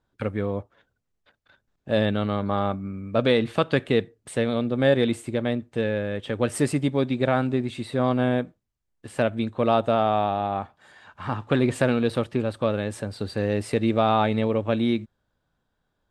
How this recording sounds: noise floor -77 dBFS; spectral tilt -5.5 dB/oct

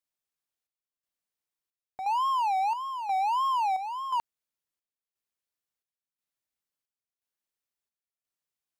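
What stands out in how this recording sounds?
chopped level 0.97 Hz, depth 60%, duty 65%

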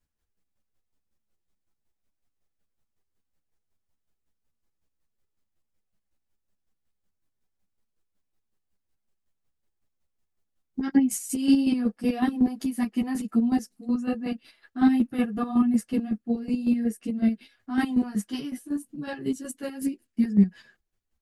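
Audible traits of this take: chopped level 5.4 Hz, depth 60%, duty 30%; a shimmering, thickened sound

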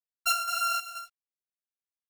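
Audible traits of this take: a buzz of ramps at a fixed pitch in blocks of 32 samples; chopped level 2.1 Hz, depth 60%, duty 65%; a quantiser's noise floor 12-bit, dither none; a shimmering, thickened sound

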